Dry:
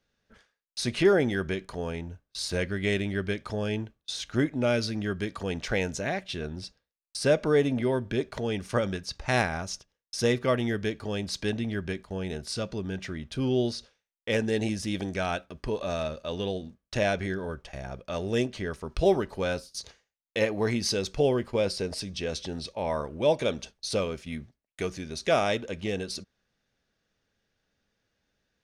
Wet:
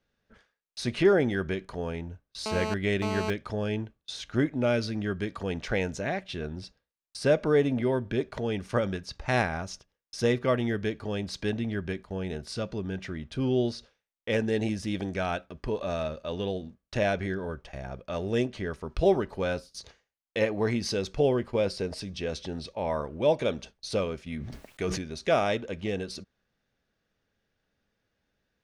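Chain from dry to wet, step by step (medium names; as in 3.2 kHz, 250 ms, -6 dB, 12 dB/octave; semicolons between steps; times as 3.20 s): treble shelf 4.5 kHz -8.5 dB; 2.46–3.30 s: mobile phone buzz -32 dBFS; 24.34–25.02 s: decay stretcher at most 38 dB/s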